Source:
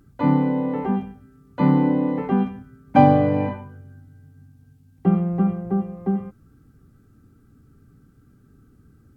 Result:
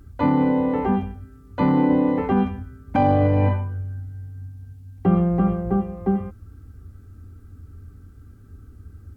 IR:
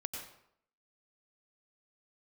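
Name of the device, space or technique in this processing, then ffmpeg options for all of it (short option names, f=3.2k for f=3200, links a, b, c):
car stereo with a boomy subwoofer: -filter_complex "[0:a]lowshelf=f=110:t=q:w=3:g=7.5,alimiter=limit=-14dB:level=0:latency=1:release=33,asettb=1/sr,asplit=3[a][b][c];[a]atrim=end=5.064[d];[b]atrim=start=5.06:end=5.76,asetpts=PTS-STARTPTS,afade=t=in:d=0.004:c=qsin,afade=t=out:st=0.696:d=0.004:c=qsin,asplit=2[e][f];[f]adelay=17,volume=-6dB[g];[e][g]amix=inputs=2:normalize=0,atrim=end_sample=30870[h];[c]atrim=start=5.756[i];[d][h]acrossfade=d=0.004:c1=hsin:c2=qsin[j];[j][i]acrossfade=d=0.004:c1=qsin:c2=hsin,volume=4dB"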